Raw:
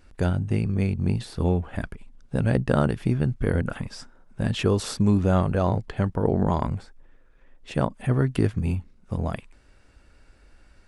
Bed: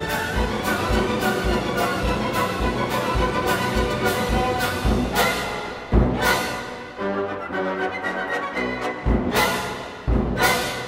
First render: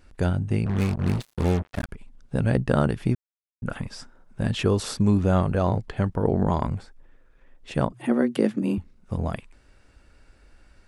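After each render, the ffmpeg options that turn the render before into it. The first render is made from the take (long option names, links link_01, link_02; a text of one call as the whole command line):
ffmpeg -i in.wav -filter_complex "[0:a]asettb=1/sr,asplit=3[link_01][link_02][link_03];[link_01]atrim=end=0.664[link_04];[link_02]atrim=start=0.66:end=1.89,asetpts=PTS-STARTPTS,afade=type=in:duration=0.004:curve=qsin,afade=type=out:start_time=1.226:duration=0.004:curve=qsin,acrusher=bits=4:mix=0:aa=0.5[link_05];[link_03]atrim=start=1.886[link_06];[link_04][link_05]acrossfade=duration=0.004:curve1=hsin:curve2=qsin[link_07];[link_07][link_06]acrossfade=duration=0.004:curve1=qsin:curve2=hsin,asettb=1/sr,asplit=3[link_08][link_09][link_10];[link_08]atrim=end=7.924[link_11];[link_09]atrim=start=7.92:end=8.78,asetpts=PTS-STARTPTS,afade=type=in:duration=0.004:curve=qsin,afade=type=out:start_time=0.856:duration=0.004:curve=qsin,afreqshift=110[link_12];[link_10]atrim=start=8.776[link_13];[link_11][link_12]acrossfade=duration=0.004:curve1=hsin:curve2=qsin[link_14];[link_14][link_13]acrossfade=duration=0.004:curve1=qsin:curve2=hsin,asplit=3[link_15][link_16][link_17];[link_15]atrim=end=3.15,asetpts=PTS-STARTPTS,afade=type=out:start_time=3.146:duration=0.004:curve=hsin[link_18];[link_16]atrim=start=3.15:end=3.62,asetpts=PTS-STARTPTS,volume=0[link_19];[link_17]atrim=start=3.62,asetpts=PTS-STARTPTS,afade=type=in:duration=0.004:curve=hsin[link_20];[link_18][link_19][link_20]concat=n=3:v=0:a=1" out.wav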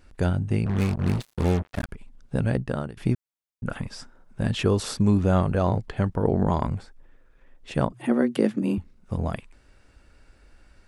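ffmpeg -i in.wav -filter_complex "[0:a]asplit=2[link_01][link_02];[link_01]atrim=end=2.97,asetpts=PTS-STARTPTS,afade=type=out:start_time=2.35:duration=0.62:silence=0.112202[link_03];[link_02]atrim=start=2.97,asetpts=PTS-STARTPTS,afade=type=in:duration=0.004:curve=hsin:silence=0.112202[link_04];[link_03][link_04]concat=n=2:v=0:a=1" out.wav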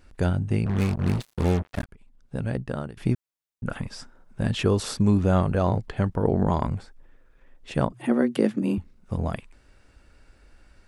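ffmpeg -i in.wav -filter_complex "[0:a]asplit=2[link_01][link_02];[link_01]atrim=end=1.84,asetpts=PTS-STARTPTS,afade=type=out:start_time=1.836:duration=0.004:curve=hsin:silence=0.223872[link_03];[link_02]atrim=start=1.84,asetpts=PTS-STARTPTS,afade=type=in:duration=1.28:silence=0.223872[link_04];[link_03][link_04]concat=n=2:v=0:a=1" out.wav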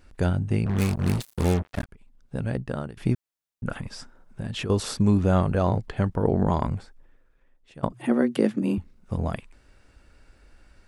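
ffmpeg -i in.wav -filter_complex "[0:a]asettb=1/sr,asplit=3[link_01][link_02][link_03];[link_01]atrim=end=0.784[link_04];[link_02]atrim=start=0.78:end=1.54,asetpts=PTS-STARTPTS,afade=type=in:duration=0.004:curve=qsin,afade=type=out:start_time=0.756:duration=0.004:curve=qsin,highshelf=frequency=6300:gain=11.5[link_05];[link_03]atrim=start=1.536[link_06];[link_04][link_05]acrossfade=duration=0.004:curve1=hsin:curve2=qsin[link_07];[link_07][link_06]acrossfade=duration=0.004:curve1=qsin:curve2=hsin,asettb=1/sr,asplit=3[link_08][link_09][link_10];[link_08]atrim=end=3.804[link_11];[link_09]atrim=start=3.8:end=4.7,asetpts=PTS-STARTPTS,afade=type=in:duration=0.004:curve=qsin,afade=type=out:start_time=0.896:duration=0.004:curve=qsin,acompressor=threshold=-27dB:ratio=6:attack=3.2:release=140:knee=1:detection=peak[link_12];[link_10]atrim=start=4.696[link_13];[link_11][link_12]acrossfade=duration=0.004:curve1=hsin:curve2=qsin[link_14];[link_14][link_13]acrossfade=duration=0.004:curve1=qsin:curve2=hsin,asplit=2[link_15][link_16];[link_15]atrim=end=7.83,asetpts=PTS-STARTPTS,afade=type=out:start_time=6.72:duration=1.11:silence=0.0707946[link_17];[link_16]atrim=start=7.83,asetpts=PTS-STARTPTS,afade=type=in:duration=0.004:curve=hsin:silence=0.0707946[link_18];[link_17][link_18]concat=n=2:v=0:a=1" out.wav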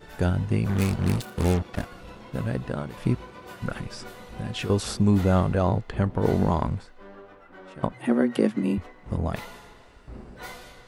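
ffmpeg -i in.wav -i bed.wav -filter_complex "[1:a]volume=-21.5dB[link_01];[0:a][link_01]amix=inputs=2:normalize=0" out.wav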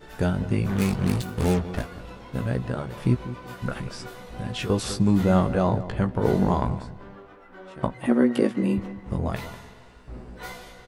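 ffmpeg -i in.wav -filter_complex "[0:a]asplit=2[link_01][link_02];[link_02]adelay=16,volume=-6.5dB[link_03];[link_01][link_03]amix=inputs=2:normalize=0,asplit=2[link_04][link_05];[link_05]adelay=194,lowpass=frequency=1100:poles=1,volume=-13dB,asplit=2[link_06][link_07];[link_07]adelay=194,lowpass=frequency=1100:poles=1,volume=0.3,asplit=2[link_08][link_09];[link_09]adelay=194,lowpass=frequency=1100:poles=1,volume=0.3[link_10];[link_04][link_06][link_08][link_10]amix=inputs=4:normalize=0" out.wav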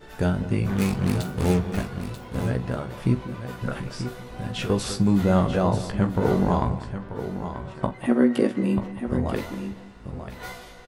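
ffmpeg -i in.wav -filter_complex "[0:a]asplit=2[link_01][link_02];[link_02]adelay=45,volume=-14dB[link_03];[link_01][link_03]amix=inputs=2:normalize=0,aecho=1:1:937:0.335" out.wav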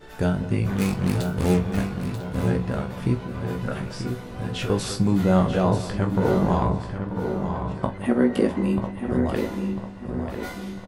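ffmpeg -i in.wav -filter_complex "[0:a]asplit=2[link_01][link_02];[link_02]adelay=27,volume=-12dB[link_03];[link_01][link_03]amix=inputs=2:normalize=0,asplit=2[link_04][link_05];[link_05]adelay=998,lowpass=frequency=2100:poles=1,volume=-8dB,asplit=2[link_06][link_07];[link_07]adelay=998,lowpass=frequency=2100:poles=1,volume=0.47,asplit=2[link_08][link_09];[link_09]adelay=998,lowpass=frequency=2100:poles=1,volume=0.47,asplit=2[link_10][link_11];[link_11]adelay=998,lowpass=frequency=2100:poles=1,volume=0.47,asplit=2[link_12][link_13];[link_13]adelay=998,lowpass=frequency=2100:poles=1,volume=0.47[link_14];[link_04][link_06][link_08][link_10][link_12][link_14]amix=inputs=6:normalize=0" out.wav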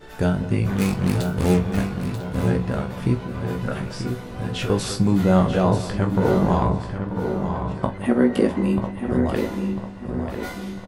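ffmpeg -i in.wav -af "volume=2dB" out.wav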